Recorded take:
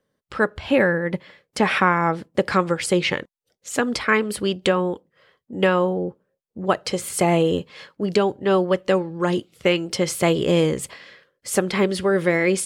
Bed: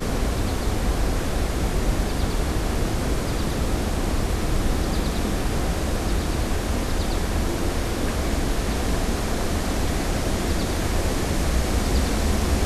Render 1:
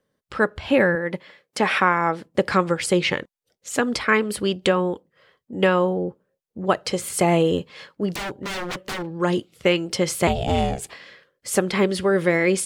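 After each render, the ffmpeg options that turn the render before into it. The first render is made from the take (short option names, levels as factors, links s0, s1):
-filter_complex "[0:a]asettb=1/sr,asplit=3[s0][s1][s2];[s0]atrim=end=0.954[s3];[s1]atrim=start=0.95:end=2.24,asetpts=PTS-STARTPTS,afade=t=in:d=0.004:c=qsin,afade=t=out:st=1.286:d=0.004:c=qsin,highpass=f=260:p=1[s4];[s2]atrim=start=2.236[s5];[s3][s4]acrossfade=d=0.004:c1=hsin:c2=qsin[s6];[s6][s5]acrossfade=d=0.004:c1=qsin:c2=hsin,asplit=3[s7][s8][s9];[s7]afade=t=out:st=8.09:d=0.02[s10];[s8]aeval=exprs='0.0631*(abs(mod(val(0)/0.0631+3,4)-2)-1)':c=same,afade=t=in:st=8.09:d=0.02,afade=t=out:st=9.15:d=0.02[s11];[s9]afade=t=in:st=9.15:d=0.02[s12];[s10][s11][s12]amix=inputs=3:normalize=0,asettb=1/sr,asplit=3[s13][s14][s15];[s13]atrim=end=10.274[s16];[s14]atrim=start=10.27:end=10.91,asetpts=PTS-STARTPTS,afade=t=in:d=0.004:c=qsin,afade=t=out:st=0.636:d=0.004:c=qsin,aeval=exprs='val(0)*sin(2*PI*270*n/s)':c=same[s17];[s15]atrim=start=10.906[s18];[s16][s17]acrossfade=d=0.004:c1=hsin:c2=qsin[s19];[s19][s18]acrossfade=d=0.004:c1=qsin:c2=hsin"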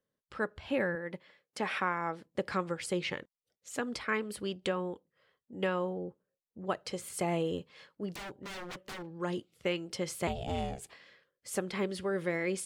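-af "volume=0.211"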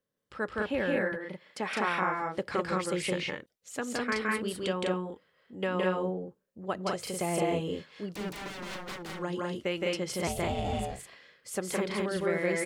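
-af "aecho=1:1:166.2|204.1:0.891|0.794"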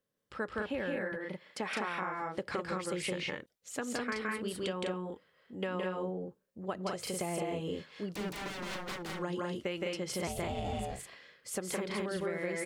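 -af "acompressor=threshold=0.0251:ratio=6"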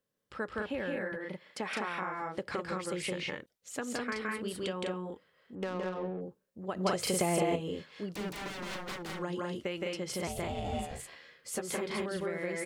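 -filter_complex "[0:a]asettb=1/sr,asplit=3[s0][s1][s2];[s0]atrim=end=5.554[s3];[s1]atrim=start=5.55:end=6.21,asetpts=PTS-STARTPTS,afade=t=in:d=0.004:c=qsin,afade=t=out:st=0.656:d=0.004:c=qsin,adynamicsmooth=sensitivity=6.5:basefreq=610[s4];[s2]atrim=start=6.206[s5];[s3][s4]acrossfade=d=0.004:c1=hsin:c2=qsin[s6];[s6][s5]acrossfade=d=0.004:c1=qsin:c2=hsin,asettb=1/sr,asplit=3[s7][s8][s9];[s7]atrim=end=6.764[s10];[s8]atrim=start=6.76:end=7.56,asetpts=PTS-STARTPTS,afade=t=in:d=0.004:c=qsin,afade=t=out:st=0.796:d=0.004:c=qsin,acontrast=64[s11];[s9]atrim=start=7.556[s12];[s10][s11]acrossfade=d=0.004:c1=hsin:c2=qsin[s13];[s13][s12]acrossfade=d=0.004:c1=qsin:c2=hsin,asettb=1/sr,asplit=3[s14][s15][s16];[s14]atrim=end=10.714[s17];[s15]atrim=start=10.71:end=12.04,asetpts=PTS-STARTPTS,afade=t=in:d=0.004:c=qsin,afade=t=out:st=1.326:d=0.004:c=qsin,asplit=2[s18][s19];[s19]adelay=13,volume=0.562[s20];[s18][s20]amix=inputs=2:normalize=0,atrim=end_sample=58653[s21];[s16]atrim=start=12.036[s22];[s17][s21]acrossfade=d=0.004:c1=hsin:c2=qsin[s23];[s23][s22]acrossfade=d=0.004:c1=qsin:c2=hsin"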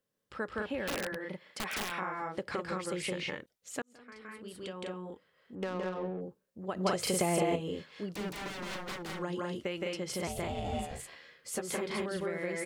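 -filter_complex "[0:a]asplit=3[s0][s1][s2];[s0]afade=t=out:st=0.85:d=0.02[s3];[s1]aeval=exprs='(mod(26.6*val(0)+1,2)-1)/26.6':c=same,afade=t=in:st=0.85:d=0.02,afade=t=out:st=1.9:d=0.02[s4];[s2]afade=t=in:st=1.9:d=0.02[s5];[s3][s4][s5]amix=inputs=3:normalize=0,asplit=2[s6][s7];[s6]atrim=end=3.82,asetpts=PTS-STARTPTS,afade=t=out:st=3.816:d=0.004:c=hsin[s8];[s7]atrim=start=3.82,asetpts=PTS-STARTPTS,afade=t=in:d=1.76[s9];[s8][s9]concat=n=2:v=0:a=1"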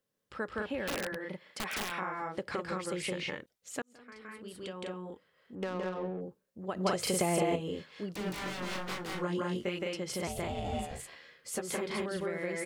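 -filter_complex "[0:a]asettb=1/sr,asplit=3[s0][s1][s2];[s0]atrim=end=8.244[s3];[s1]atrim=start=8.24:end=9.79,asetpts=PTS-STARTPTS,afade=t=in:d=0.004:c=qsin,afade=t=out:st=1.546:d=0.004:c=qsin,asplit=2[s4][s5];[s5]adelay=22,volume=0.75[s6];[s4][s6]amix=inputs=2:normalize=0,atrim=end_sample=68355[s7];[s2]atrim=start=9.786[s8];[s3][s7]acrossfade=d=0.004:c1=hsin:c2=qsin[s9];[s9][s8]acrossfade=d=0.004:c1=qsin:c2=hsin"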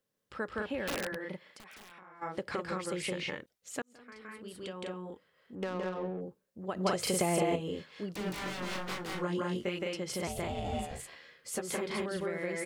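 -filter_complex "[0:a]asplit=3[s0][s1][s2];[s0]afade=t=out:st=1.44:d=0.02[s3];[s1]acompressor=threshold=0.00282:ratio=6:attack=3.2:release=140:knee=1:detection=peak,afade=t=in:st=1.44:d=0.02,afade=t=out:st=2.21:d=0.02[s4];[s2]afade=t=in:st=2.21:d=0.02[s5];[s3][s4][s5]amix=inputs=3:normalize=0"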